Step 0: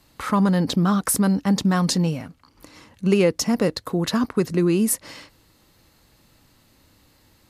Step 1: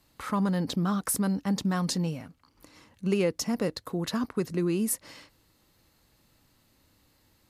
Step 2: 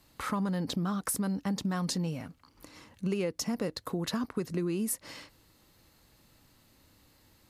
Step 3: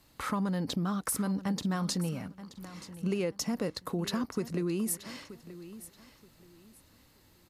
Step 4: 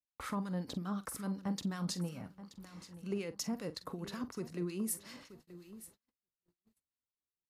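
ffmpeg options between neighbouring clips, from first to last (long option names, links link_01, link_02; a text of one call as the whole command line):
ffmpeg -i in.wav -af "highshelf=frequency=12000:gain=3.5,volume=-8dB" out.wav
ffmpeg -i in.wav -af "acompressor=threshold=-33dB:ratio=3,volume=2.5dB" out.wav
ffmpeg -i in.wav -af "aecho=1:1:928|1856|2784:0.178|0.0445|0.0111" out.wav
ffmpeg -i in.wav -filter_complex "[0:a]acrossover=split=1400[link_01][link_02];[link_01]aeval=exprs='val(0)*(1-0.7/2+0.7/2*cos(2*PI*5.4*n/s))':channel_layout=same[link_03];[link_02]aeval=exprs='val(0)*(1-0.7/2-0.7/2*cos(2*PI*5.4*n/s))':channel_layout=same[link_04];[link_03][link_04]amix=inputs=2:normalize=0,asplit=2[link_05][link_06];[link_06]adelay=45,volume=-14dB[link_07];[link_05][link_07]amix=inputs=2:normalize=0,agate=range=-38dB:threshold=-54dB:ratio=16:detection=peak,volume=-4dB" out.wav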